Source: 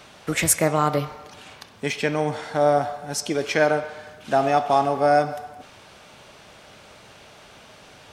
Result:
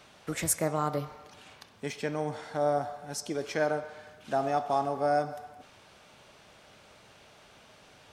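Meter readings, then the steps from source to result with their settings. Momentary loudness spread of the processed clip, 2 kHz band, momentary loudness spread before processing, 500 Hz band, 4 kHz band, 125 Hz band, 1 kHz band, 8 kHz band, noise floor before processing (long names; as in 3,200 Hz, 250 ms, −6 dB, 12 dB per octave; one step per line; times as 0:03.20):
17 LU, −11.5 dB, 16 LU, −8.5 dB, −11.0 dB, −8.5 dB, −9.0 dB, −9.0 dB, −48 dBFS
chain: dynamic equaliser 2,600 Hz, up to −6 dB, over −40 dBFS, Q 1.3
level −8.5 dB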